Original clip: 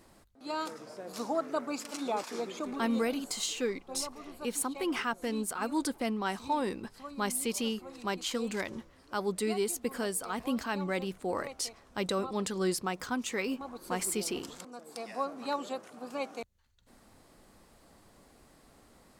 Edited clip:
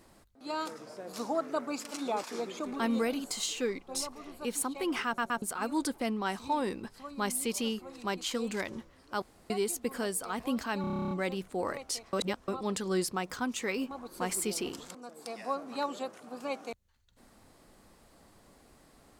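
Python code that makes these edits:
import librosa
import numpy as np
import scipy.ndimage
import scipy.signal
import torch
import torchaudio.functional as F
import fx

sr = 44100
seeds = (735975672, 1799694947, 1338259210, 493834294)

y = fx.edit(x, sr, fx.stutter_over(start_s=5.06, slice_s=0.12, count=3),
    fx.room_tone_fill(start_s=9.22, length_s=0.28),
    fx.stutter(start_s=10.81, slice_s=0.03, count=11),
    fx.reverse_span(start_s=11.83, length_s=0.35), tone=tone)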